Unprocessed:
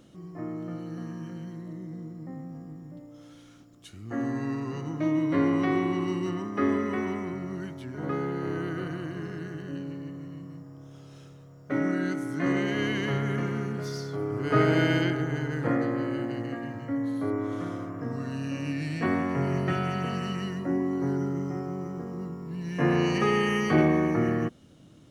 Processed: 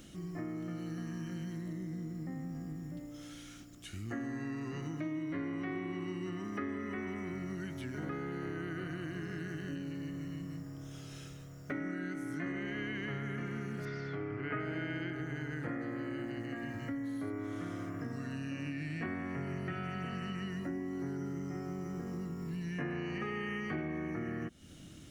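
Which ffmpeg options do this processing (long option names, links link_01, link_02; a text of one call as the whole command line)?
ffmpeg -i in.wav -filter_complex "[0:a]asettb=1/sr,asplit=3[link_01][link_02][link_03];[link_01]atrim=end=13.854[link_04];[link_02]atrim=start=13.85:end=14.6,asetpts=PTS-STARTPTS,afade=type=in:duration=0.004:curve=qsin,afade=type=out:start_time=0.746:duration=0.004:curve=qsin,lowpass=frequency=2400:width_type=q:width=1.8[link_05];[link_03]atrim=start=14.596[link_06];[link_04][link_05]acrossfade=duration=0.004:curve1=hsin:curve2=qsin[link_07];[link_07][link_06]acrossfade=duration=0.004:curve1=qsin:curve2=hsin,acrossover=split=2500[link_08][link_09];[link_09]acompressor=threshold=-57dB:ratio=4:attack=1:release=60[link_10];[link_08][link_10]amix=inputs=2:normalize=0,equalizer=frequency=125:width_type=o:width=1:gain=-9,equalizer=frequency=250:width_type=o:width=1:gain=-5,equalizer=frequency=500:width_type=o:width=1:gain=-10,equalizer=frequency=1000:width_type=o:width=1:gain=-11,equalizer=frequency=4000:width_type=o:width=1:gain=-4,acompressor=threshold=-47dB:ratio=5,volume=10dB" out.wav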